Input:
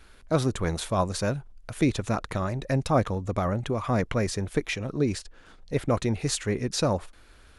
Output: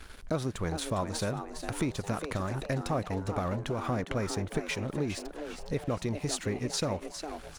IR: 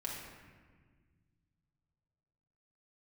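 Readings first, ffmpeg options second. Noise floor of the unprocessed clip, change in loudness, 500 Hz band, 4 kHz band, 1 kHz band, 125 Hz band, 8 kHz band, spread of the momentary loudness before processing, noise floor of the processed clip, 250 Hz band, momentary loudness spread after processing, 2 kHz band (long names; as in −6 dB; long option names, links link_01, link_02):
−53 dBFS, −5.5 dB, −5.5 dB, −3.5 dB, −5.0 dB, −6.0 dB, −3.5 dB, 5 LU, −47 dBFS, −5.5 dB, 5 LU, −4.0 dB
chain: -filter_complex "[0:a]acompressor=threshold=-41dB:ratio=3,aeval=exprs='sgn(val(0))*max(abs(val(0))-0.00119,0)':channel_layout=same,asplit=2[link_01][link_02];[link_02]asplit=5[link_03][link_04][link_05][link_06][link_07];[link_03]adelay=407,afreqshift=150,volume=-9dB[link_08];[link_04]adelay=814,afreqshift=300,volume=-16.3dB[link_09];[link_05]adelay=1221,afreqshift=450,volume=-23.7dB[link_10];[link_06]adelay=1628,afreqshift=600,volume=-31dB[link_11];[link_07]adelay=2035,afreqshift=750,volume=-38.3dB[link_12];[link_08][link_09][link_10][link_11][link_12]amix=inputs=5:normalize=0[link_13];[link_01][link_13]amix=inputs=2:normalize=0,volume=8dB"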